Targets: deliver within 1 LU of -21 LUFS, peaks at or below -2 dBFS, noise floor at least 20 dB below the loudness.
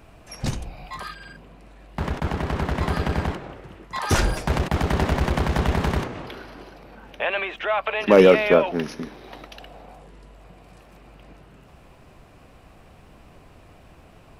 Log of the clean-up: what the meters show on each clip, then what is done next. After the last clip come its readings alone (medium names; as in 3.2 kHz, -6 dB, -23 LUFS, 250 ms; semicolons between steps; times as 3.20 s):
loudness -22.5 LUFS; peak level -4.0 dBFS; loudness target -21.0 LUFS
-> trim +1.5 dB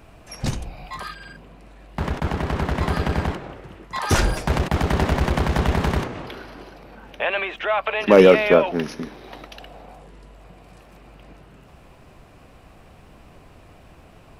loudness -21.0 LUFS; peak level -2.5 dBFS; noise floor -49 dBFS